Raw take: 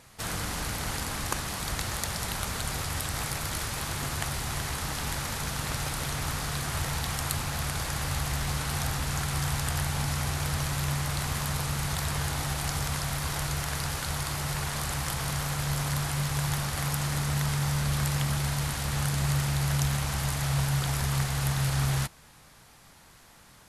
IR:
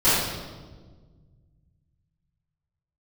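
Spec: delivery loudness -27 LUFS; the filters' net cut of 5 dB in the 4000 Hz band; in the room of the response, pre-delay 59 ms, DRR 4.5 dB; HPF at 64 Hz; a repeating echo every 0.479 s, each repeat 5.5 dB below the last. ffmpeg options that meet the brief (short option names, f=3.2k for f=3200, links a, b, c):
-filter_complex "[0:a]highpass=64,equalizer=f=4k:t=o:g=-6.5,aecho=1:1:479|958|1437|1916|2395|2874|3353:0.531|0.281|0.149|0.079|0.0419|0.0222|0.0118,asplit=2[a][b];[1:a]atrim=start_sample=2205,adelay=59[c];[b][c]afir=irnorm=-1:irlink=0,volume=-23.5dB[d];[a][d]amix=inputs=2:normalize=0,volume=1dB"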